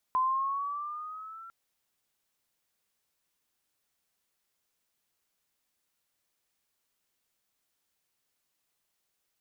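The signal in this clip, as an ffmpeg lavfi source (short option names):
-f lavfi -i "aevalsrc='pow(10,(-23-21*t/1.35)/20)*sin(2*PI*1020*1.35/(5*log(2)/12)*(exp(5*log(2)/12*t/1.35)-1))':d=1.35:s=44100"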